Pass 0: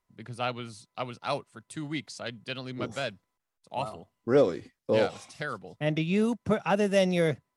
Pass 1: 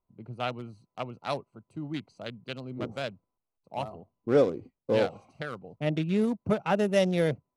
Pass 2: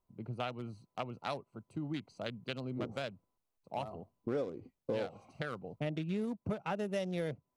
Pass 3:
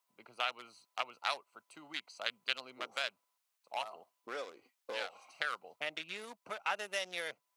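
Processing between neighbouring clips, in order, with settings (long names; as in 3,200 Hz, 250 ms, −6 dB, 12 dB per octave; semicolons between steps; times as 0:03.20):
adaptive Wiener filter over 25 samples
downward compressor 4 to 1, threshold −36 dBFS, peak gain reduction 15.5 dB; level +1 dB
high-pass filter 1,300 Hz 12 dB per octave; level +9 dB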